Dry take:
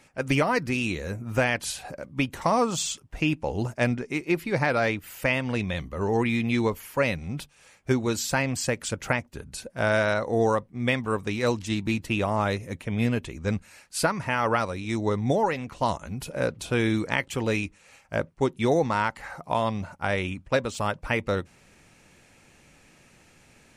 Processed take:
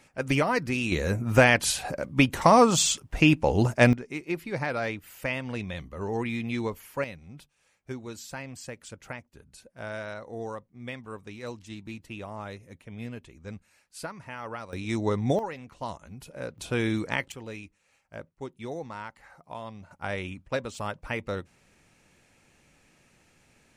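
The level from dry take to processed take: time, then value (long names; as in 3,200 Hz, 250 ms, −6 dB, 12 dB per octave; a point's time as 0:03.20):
−1.5 dB
from 0:00.92 +5.5 dB
from 0:03.93 −6 dB
from 0:07.04 −13.5 dB
from 0:14.73 −1 dB
from 0:15.39 −10 dB
from 0:16.58 −3 dB
from 0:17.32 −14 dB
from 0:19.91 −6 dB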